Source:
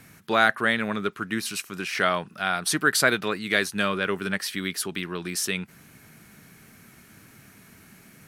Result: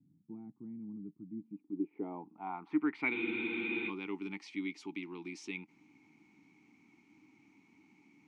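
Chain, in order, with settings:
formant filter u
low-pass filter sweep 160 Hz → 6,500 Hz, 0:01.33–0:03.69
frozen spectrum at 0:03.15, 0.73 s

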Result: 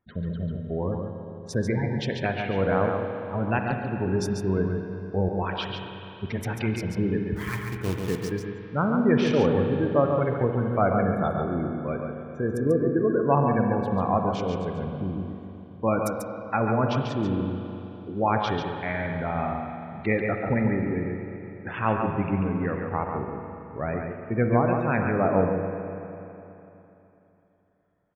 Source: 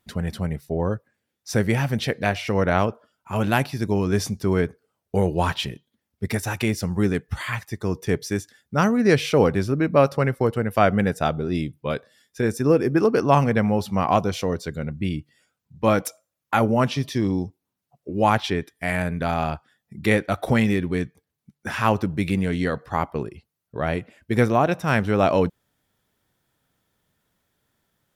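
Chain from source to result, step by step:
adaptive Wiener filter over 9 samples
0:05.29–0:05.70: high-pass filter 740 Hz 6 dB per octave
gate on every frequency bin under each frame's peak −20 dB strong
0:03.59–0:04.06: all-pass dispersion lows, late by 113 ms, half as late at 2,200 Hz
0:07.36–0:08.31: log-companded quantiser 4 bits
single-tap delay 141 ms −5.5 dB
convolution reverb RT60 3.2 s, pre-delay 41 ms, DRR 4.5 dB
level −5 dB

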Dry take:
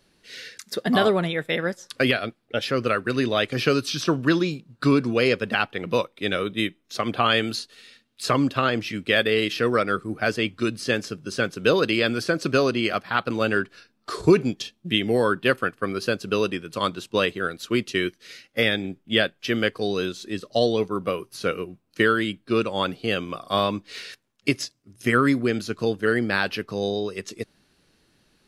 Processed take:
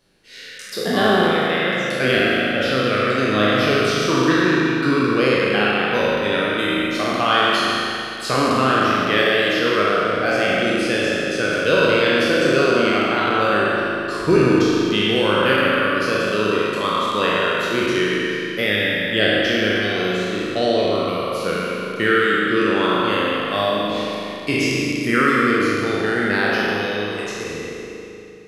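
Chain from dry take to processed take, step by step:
peak hold with a decay on every bin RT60 2.36 s
spring reverb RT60 2.3 s, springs 38 ms, chirp 35 ms, DRR −1 dB
level −3 dB

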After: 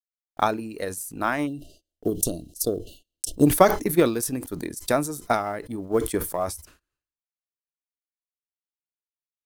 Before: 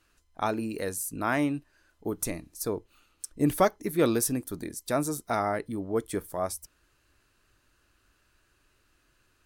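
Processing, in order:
one scale factor per block 7 bits
time-frequency box erased 0:01.47–0:03.46, 740–2,700 Hz
noise gate −55 dBFS, range −53 dB
transient designer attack +11 dB, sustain −3 dB
level that may fall only so fast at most 110 dB per second
level −2 dB

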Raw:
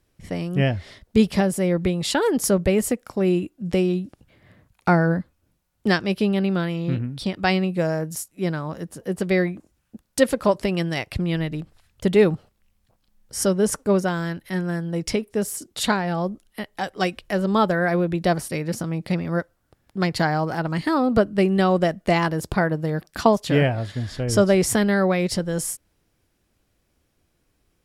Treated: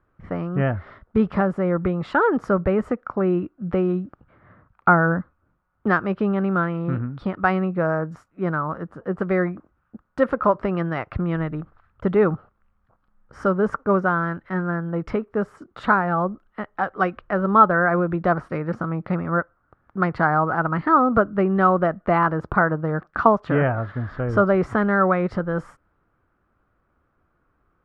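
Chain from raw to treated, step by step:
in parallel at −2.5 dB: brickwall limiter −15 dBFS, peak gain reduction 11 dB
on the sum: low-pass with resonance 1,300 Hz, resonance Q 4.9
level −5 dB

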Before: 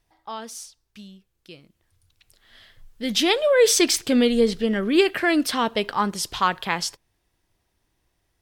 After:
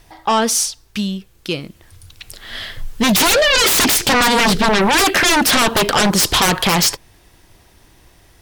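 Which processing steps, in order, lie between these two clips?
in parallel at −2.5 dB: downward compressor, threshold −30 dBFS, peak gain reduction 16.5 dB
on the sum: sine wavefolder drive 19 dB, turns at −4.5 dBFS
level −5.5 dB

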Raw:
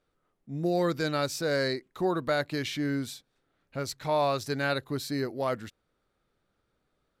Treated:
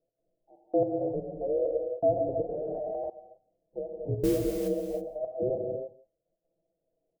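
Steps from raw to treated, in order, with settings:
frequency inversion band by band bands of 1,000 Hz
Chebyshev low-pass filter 660 Hz, order 6
comb filter 6.1 ms, depth 71%
gate pattern "x.xxxx..x.xx" 163 BPM −60 dB
0:04.15–0:04.68: noise that follows the level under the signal 18 dB
on a send: single-tap delay 168 ms −21 dB
on the sum: reverb whose tail is shaped and stops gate 350 ms flat, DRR 0.5 dB
0:02.49–0:03.10: envelope flattener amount 100%
level −1 dB

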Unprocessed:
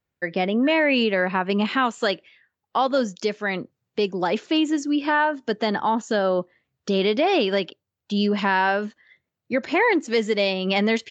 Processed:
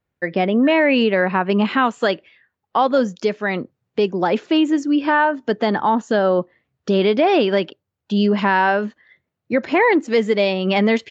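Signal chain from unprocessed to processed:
high-shelf EQ 3,700 Hz −11 dB
level +5 dB

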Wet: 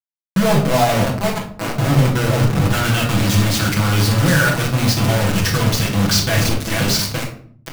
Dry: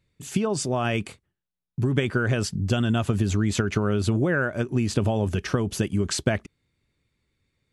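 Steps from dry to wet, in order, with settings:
feedback delay that plays each chunk backwards 436 ms, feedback 53%, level −14 dB
low-pass filter 7,500 Hz
parametric band 380 Hz −14 dB 0.88 octaves
notch filter 770 Hz, Q 12
reversed playback
downward compressor 16 to 1, threshold −34 dBFS, peak gain reduction 16 dB
reversed playback
low-pass filter sweep 740 Hz → 5,500 Hz, 0:02.31–0:03.35
log-companded quantiser 2 bits
convolution reverb RT60 0.55 s, pre-delay 6 ms, DRR −2.5 dB
level +8.5 dB

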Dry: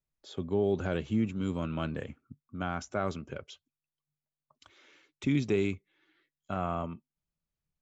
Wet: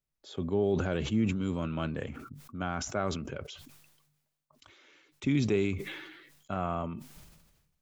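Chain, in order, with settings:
level that may fall only so fast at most 47 dB per second

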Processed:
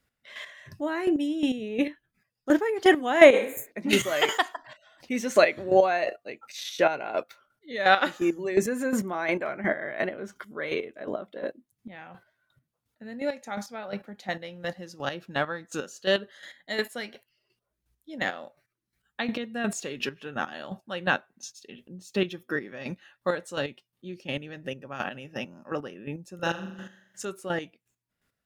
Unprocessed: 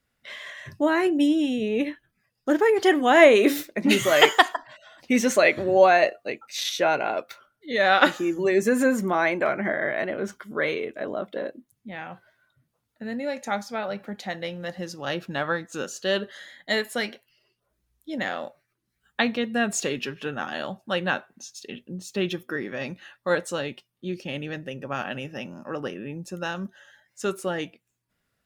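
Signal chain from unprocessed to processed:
0:26.35–0:27.25: flutter between parallel walls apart 7.2 metres, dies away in 0.75 s
square-wave tremolo 2.8 Hz, depth 65%, duty 25%
0:03.36–0:03.69: healed spectral selection 260–6,300 Hz both
level +1 dB

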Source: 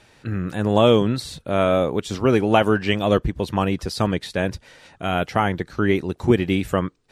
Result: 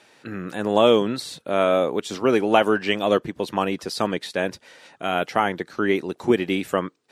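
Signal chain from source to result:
high-pass filter 250 Hz 12 dB per octave

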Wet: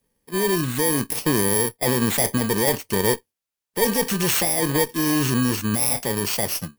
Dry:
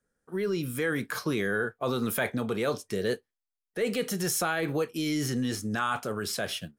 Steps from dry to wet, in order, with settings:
samples in bit-reversed order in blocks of 32 samples
harmonic generator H 2 −7 dB, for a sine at −13 dBFS
level +8.5 dB

